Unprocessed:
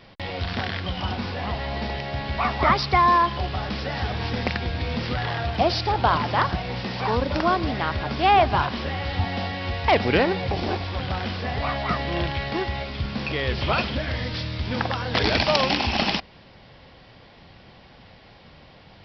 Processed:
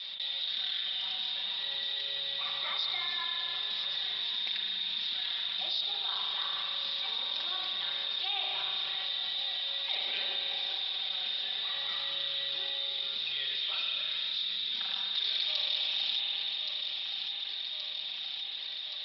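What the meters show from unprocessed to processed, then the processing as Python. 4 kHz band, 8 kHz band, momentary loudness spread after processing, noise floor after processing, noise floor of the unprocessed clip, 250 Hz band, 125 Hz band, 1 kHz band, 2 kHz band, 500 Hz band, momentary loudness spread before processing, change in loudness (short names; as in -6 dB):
+2.5 dB, n/a, 4 LU, -39 dBFS, -50 dBFS, under -30 dB, under -40 dB, -23.5 dB, -12.5 dB, -26.0 dB, 10 LU, -7.0 dB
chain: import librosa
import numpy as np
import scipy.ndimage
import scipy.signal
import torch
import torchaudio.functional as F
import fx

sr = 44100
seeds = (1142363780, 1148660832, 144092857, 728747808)

y = fx.bandpass_q(x, sr, hz=3700.0, q=19.0)
y = y + 0.99 * np.pad(y, (int(5.2 * sr / 1000.0), 0))[:len(y)]
y = fx.echo_feedback(y, sr, ms=1123, feedback_pct=47, wet_db=-15.5)
y = fx.rev_spring(y, sr, rt60_s=2.3, pass_ms=(36,), chirp_ms=60, drr_db=0.0)
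y = fx.env_flatten(y, sr, amount_pct=70)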